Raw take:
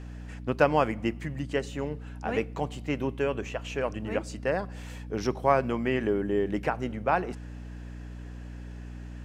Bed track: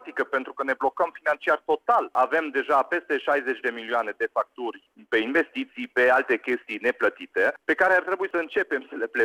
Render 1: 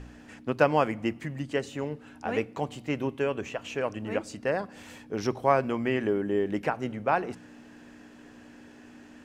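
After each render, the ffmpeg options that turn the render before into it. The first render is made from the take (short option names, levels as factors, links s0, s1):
-af "bandreject=f=60:t=h:w=4,bandreject=f=120:t=h:w=4,bandreject=f=180:t=h:w=4"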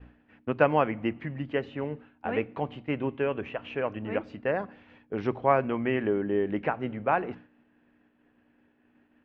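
-af "agate=range=0.0224:threshold=0.0112:ratio=3:detection=peak,lowpass=f=3000:w=0.5412,lowpass=f=3000:w=1.3066"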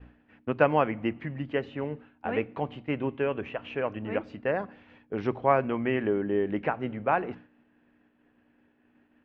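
-af anull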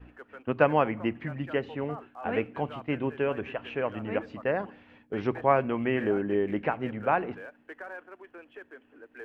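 -filter_complex "[1:a]volume=0.0794[s0];[0:a][s0]amix=inputs=2:normalize=0"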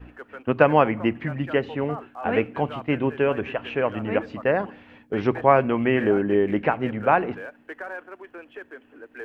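-af "volume=2.11,alimiter=limit=0.708:level=0:latency=1"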